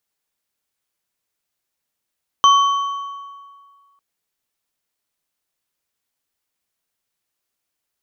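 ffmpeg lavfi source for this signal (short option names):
-f lavfi -i "aevalsrc='0.447*pow(10,-3*t/1.86)*sin(2*PI*1120*t)+0.158*pow(10,-3*t/1.372)*sin(2*PI*3087.8*t)+0.0562*pow(10,-3*t/1.121)*sin(2*PI*6052.5*t)':d=1.55:s=44100"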